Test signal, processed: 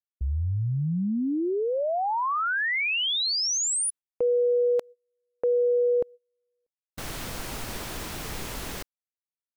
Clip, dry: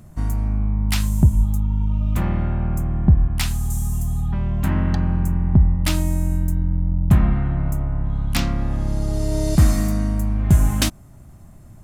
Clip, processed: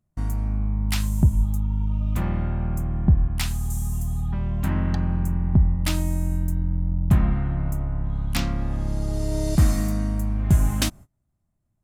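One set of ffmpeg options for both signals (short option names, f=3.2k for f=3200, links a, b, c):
-af "agate=range=-27dB:threshold=-36dB:ratio=16:detection=peak,volume=-3.5dB"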